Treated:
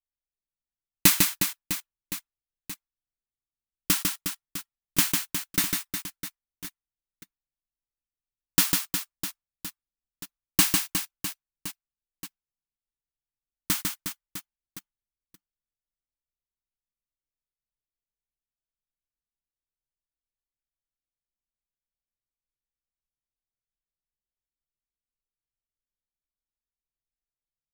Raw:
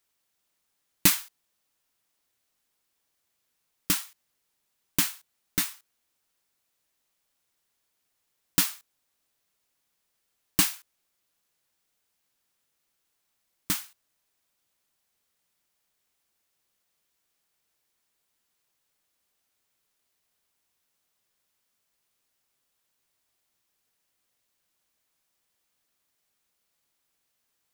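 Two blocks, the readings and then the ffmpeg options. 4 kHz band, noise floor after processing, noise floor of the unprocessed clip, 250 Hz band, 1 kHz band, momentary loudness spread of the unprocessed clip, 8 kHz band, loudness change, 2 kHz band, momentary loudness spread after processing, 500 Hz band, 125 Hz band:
+4.0 dB, below −85 dBFS, −78 dBFS, +4.0 dB, +4.0 dB, 10 LU, +4.0 dB, +1.0 dB, +4.0 dB, 20 LU, +4.0 dB, +4.0 dB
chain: -af "aecho=1:1:150|360|654|1066|1642:0.631|0.398|0.251|0.158|0.1,anlmdn=0.398,volume=2dB"

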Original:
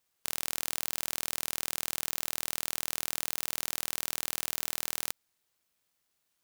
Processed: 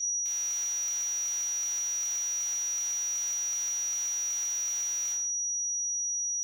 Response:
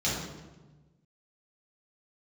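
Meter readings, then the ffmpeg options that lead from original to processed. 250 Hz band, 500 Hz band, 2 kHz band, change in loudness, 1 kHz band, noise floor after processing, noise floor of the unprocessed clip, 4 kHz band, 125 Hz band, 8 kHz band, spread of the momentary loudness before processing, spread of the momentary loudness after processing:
below −15 dB, below −10 dB, −8.0 dB, +4.0 dB, −9.5 dB, −32 dBFS, −79 dBFS, −6.5 dB, below −25 dB, +12.0 dB, 1 LU, 0 LU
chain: -filter_complex "[0:a]aeval=exprs='val(0)+0.0112*sin(2*PI*5800*n/s)':channel_layout=same,aeval=exprs='(mod(11.9*val(0)+1,2)-1)/11.9':channel_layout=same,highpass=790[link_01];[1:a]atrim=start_sample=2205,afade=type=out:start_time=0.25:duration=0.01,atrim=end_sample=11466[link_02];[link_01][link_02]afir=irnorm=-1:irlink=0"

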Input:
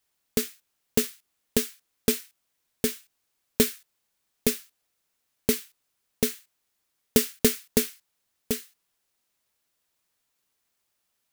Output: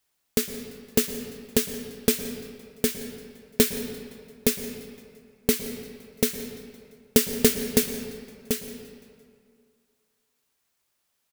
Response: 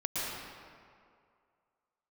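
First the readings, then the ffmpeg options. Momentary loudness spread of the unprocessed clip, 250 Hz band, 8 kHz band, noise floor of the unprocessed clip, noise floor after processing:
11 LU, +2.5 dB, +2.0 dB, −77 dBFS, −75 dBFS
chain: -filter_complex "[0:a]aecho=1:1:171|342|513|684:0.0841|0.0463|0.0255|0.014,asplit=2[link_01][link_02];[1:a]atrim=start_sample=2205[link_03];[link_02][link_03]afir=irnorm=-1:irlink=0,volume=-12.5dB[link_04];[link_01][link_04]amix=inputs=2:normalize=0"

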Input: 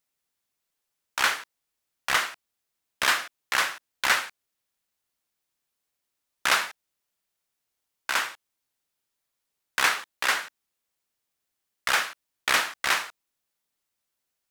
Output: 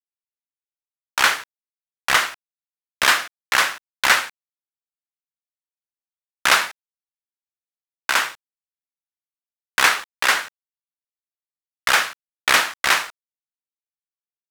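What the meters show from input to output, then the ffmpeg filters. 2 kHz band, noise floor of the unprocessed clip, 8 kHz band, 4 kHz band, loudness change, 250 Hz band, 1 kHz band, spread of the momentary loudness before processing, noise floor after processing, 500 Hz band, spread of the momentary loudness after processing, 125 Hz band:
+6.5 dB, −82 dBFS, +6.5 dB, +6.5 dB, +6.5 dB, +6.5 dB, +6.5 dB, 12 LU, below −85 dBFS, +6.5 dB, 12 LU, can't be measured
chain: -af "dynaudnorm=framelen=110:gausssize=3:maxgain=11dB,aeval=exprs='sgn(val(0))*max(abs(val(0))-0.00596,0)':channel_layout=same"

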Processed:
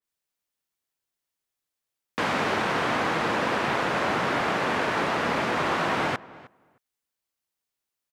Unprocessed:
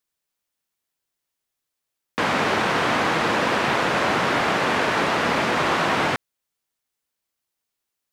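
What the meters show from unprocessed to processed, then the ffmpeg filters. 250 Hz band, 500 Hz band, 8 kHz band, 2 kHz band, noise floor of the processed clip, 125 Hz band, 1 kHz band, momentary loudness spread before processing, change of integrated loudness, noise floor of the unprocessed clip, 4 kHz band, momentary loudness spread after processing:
−4.0 dB, −4.0 dB, −6.5 dB, −4.5 dB, below −85 dBFS, −4.0 dB, −4.0 dB, 3 LU, −4.5 dB, −82 dBFS, −6.0 dB, 2 LU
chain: -filter_complex "[0:a]asplit=2[link_01][link_02];[link_02]adelay=310,lowpass=frequency=1700:poles=1,volume=-19dB,asplit=2[link_03][link_04];[link_04]adelay=310,lowpass=frequency=1700:poles=1,volume=0.15[link_05];[link_03][link_05]amix=inputs=2:normalize=0[link_06];[link_01][link_06]amix=inputs=2:normalize=0,adynamicequalizer=threshold=0.0141:dfrequency=2400:dqfactor=0.7:tfrequency=2400:tqfactor=0.7:attack=5:release=100:ratio=0.375:range=1.5:mode=cutabove:tftype=highshelf,volume=-4dB"

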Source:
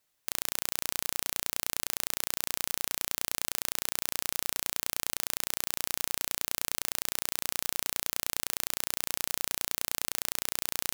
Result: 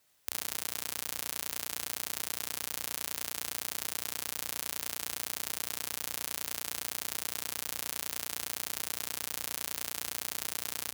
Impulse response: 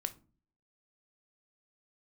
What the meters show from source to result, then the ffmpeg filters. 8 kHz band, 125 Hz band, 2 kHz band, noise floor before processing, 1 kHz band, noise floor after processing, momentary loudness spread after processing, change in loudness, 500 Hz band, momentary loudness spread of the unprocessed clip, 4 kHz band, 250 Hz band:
−3.5 dB, −4.0 dB, −3.5 dB, −77 dBFS, −3.5 dB, −47 dBFS, 0 LU, −3.5 dB, −3.5 dB, 0 LU, −3.5 dB, −3.0 dB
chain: -af "highpass=55,acompressor=threshold=-35dB:ratio=5,aecho=1:1:48|63|74:0.316|0.282|0.422,volume=5.5dB"

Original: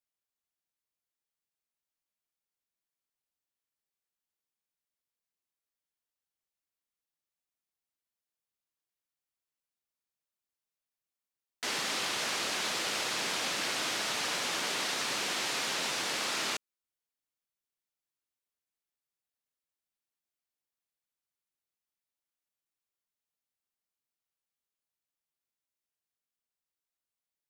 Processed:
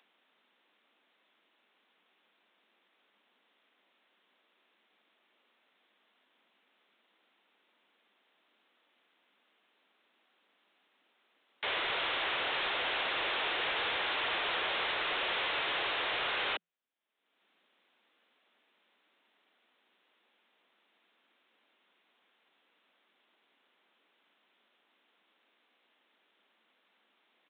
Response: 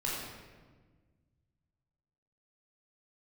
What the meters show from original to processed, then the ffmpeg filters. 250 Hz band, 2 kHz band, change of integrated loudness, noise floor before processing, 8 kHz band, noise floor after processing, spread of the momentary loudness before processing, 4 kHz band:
−5.5 dB, +2.0 dB, −1.0 dB, below −85 dBFS, below −40 dB, −75 dBFS, 1 LU, −1.0 dB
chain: -af "afreqshift=170,equalizer=frequency=180:width=6.6:gain=-10.5,aresample=8000,asoftclip=type=tanh:threshold=-32.5dB,aresample=44100,acompressor=mode=upward:threshold=-59dB:ratio=2.5,volume=4.5dB"

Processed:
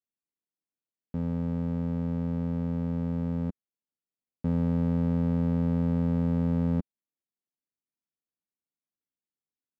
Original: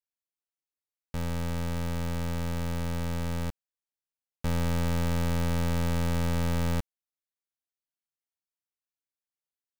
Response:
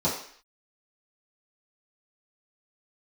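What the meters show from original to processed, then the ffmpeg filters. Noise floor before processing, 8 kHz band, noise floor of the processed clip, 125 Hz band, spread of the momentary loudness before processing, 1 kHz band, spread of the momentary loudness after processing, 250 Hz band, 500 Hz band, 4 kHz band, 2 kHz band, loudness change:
below −85 dBFS, below −25 dB, below −85 dBFS, +1.5 dB, 6 LU, −7.0 dB, 6 LU, +6.0 dB, −0.5 dB, below −15 dB, below −10 dB, +2.0 dB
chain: -af "bandpass=frequency=230:width_type=q:width=1.4:csg=0,volume=7.5dB"

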